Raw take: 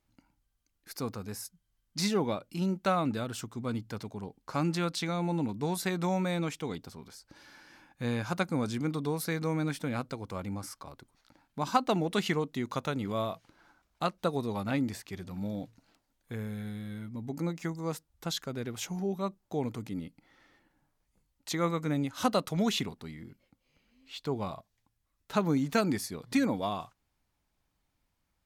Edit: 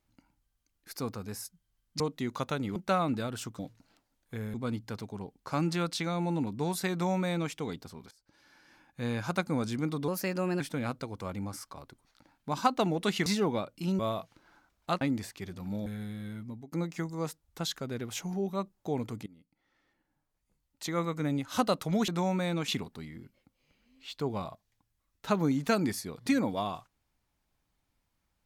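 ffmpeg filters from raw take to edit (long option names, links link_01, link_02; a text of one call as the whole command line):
ffmpeg -i in.wav -filter_complex "[0:a]asplit=16[link_01][link_02][link_03][link_04][link_05][link_06][link_07][link_08][link_09][link_10][link_11][link_12][link_13][link_14][link_15][link_16];[link_01]atrim=end=2.002[link_17];[link_02]atrim=start=12.358:end=13.122[link_18];[link_03]atrim=start=2.728:end=3.562[link_19];[link_04]atrim=start=15.568:end=16.522[link_20];[link_05]atrim=start=3.558:end=7.13,asetpts=PTS-STARTPTS,afade=type=out:start_time=3.568:duration=0.004:curve=hsin:silence=0.141254[link_21];[link_06]atrim=start=7.13:end=9.104,asetpts=PTS-STARTPTS,afade=type=in:duration=1.14:silence=0.141254[link_22];[link_07]atrim=start=9.1:end=9.7,asetpts=PTS-STARTPTS,asetrate=50715,aresample=44100[link_23];[link_08]atrim=start=9.696:end=12.362[link_24];[link_09]atrim=start=1.998:end=2.732[link_25];[link_10]atrim=start=13.118:end=14.142[link_26];[link_11]atrim=start=14.718:end=15.572[link_27];[link_12]atrim=start=16.518:end=17.38,asetpts=PTS-STARTPTS,afade=type=out:start_time=0.592:duration=0.27[link_28];[link_13]atrim=start=17.38:end=19.92,asetpts=PTS-STARTPTS,afade=type=in:duration=0.004:curve=hsin,afade=type=out:start_time=2.536:duration=0.004:curve=hsin:silence=0.0749894[link_29];[link_14]atrim=start=19.92:end=22.742,asetpts=PTS-STARTPTS,afade=type=in:duration=2.16:silence=0.0749894[link_30];[link_15]atrim=start=5.938:end=6.542[link_31];[link_16]atrim=start=22.738[link_32];[link_17][link_18]acrossfade=duration=0.004:curve1=hsin:curve2=hsin[link_33];[link_33][link_19]acrossfade=duration=0.004:curve1=hsin:curve2=hsin[link_34];[link_34][link_20]acrossfade=duration=0.004:curve1=hsin:curve2=hsin[link_35];[link_21][link_22]concat=n=2:v=0:a=1[link_36];[link_35][link_36]acrossfade=duration=0.004:curve1=hsin:curve2=hsin[link_37];[link_37][link_23]acrossfade=duration=0.004:curve1=hsin:curve2=hsin[link_38];[link_38][link_24]acrossfade=duration=0.004:curve1=hsin:curve2=hsin[link_39];[link_39][link_25]acrossfade=duration=0.004:curve1=hsin:curve2=hsin[link_40];[link_40][link_26]acrossfade=duration=0.004:curve1=hsin:curve2=hsin[link_41];[link_41][link_27]acrossfade=duration=0.004:curve1=hsin:curve2=hsin[link_42];[link_28][link_29][link_30]concat=n=3:v=0:a=1[link_43];[link_42][link_43]acrossfade=duration=0.004:curve1=hsin:curve2=hsin[link_44];[link_44][link_31]acrossfade=duration=0.004:curve1=hsin:curve2=hsin[link_45];[link_45][link_32]acrossfade=duration=0.004:curve1=hsin:curve2=hsin" out.wav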